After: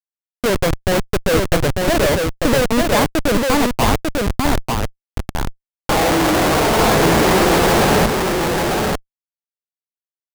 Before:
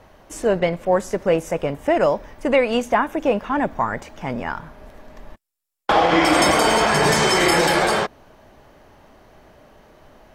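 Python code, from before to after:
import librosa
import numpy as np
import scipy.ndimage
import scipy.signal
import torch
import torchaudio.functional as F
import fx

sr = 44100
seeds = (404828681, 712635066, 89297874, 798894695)

p1 = scipy.signal.sosfilt(scipy.signal.butter(4, 2000.0, 'lowpass', fs=sr, output='sos'), x)
p2 = fx.schmitt(p1, sr, flips_db=-21.0)
p3 = p2 + fx.echo_single(p2, sr, ms=896, db=-3.0, dry=0)
y = p3 * 10.0 ** (6.5 / 20.0)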